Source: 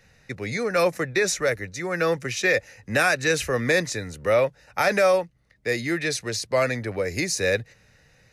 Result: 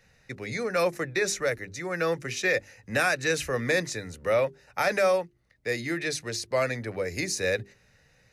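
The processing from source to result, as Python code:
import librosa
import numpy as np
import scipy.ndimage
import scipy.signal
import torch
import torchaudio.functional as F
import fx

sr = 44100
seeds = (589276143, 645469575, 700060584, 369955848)

y = fx.hum_notches(x, sr, base_hz=50, count=8)
y = F.gain(torch.from_numpy(y), -4.0).numpy()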